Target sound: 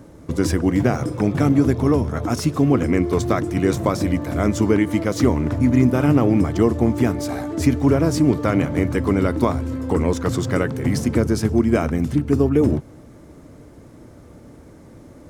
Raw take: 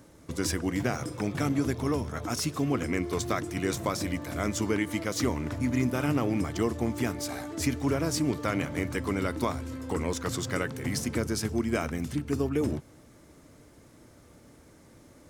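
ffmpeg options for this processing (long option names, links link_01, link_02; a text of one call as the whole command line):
ffmpeg -i in.wav -af "tiltshelf=frequency=1300:gain=5.5,volume=6.5dB" out.wav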